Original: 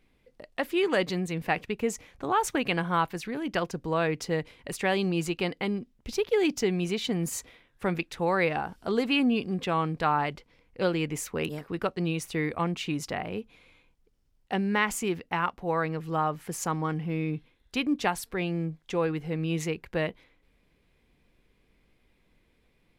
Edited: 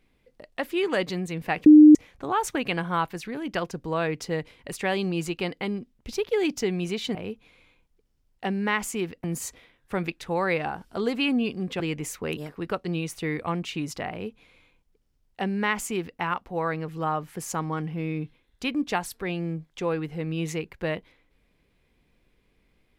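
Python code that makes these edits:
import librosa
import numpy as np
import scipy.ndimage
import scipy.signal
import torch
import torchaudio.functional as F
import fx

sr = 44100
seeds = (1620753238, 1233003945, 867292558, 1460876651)

y = fx.edit(x, sr, fx.bleep(start_s=1.66, length_s=0.29, hz=303.0, db=-7.0),
    fx.cut(start_s=9.71, length_s=1.21),
    fx.duplicate(start_s=13.23, length_s=2.09, to_s=7.15), tone=tone)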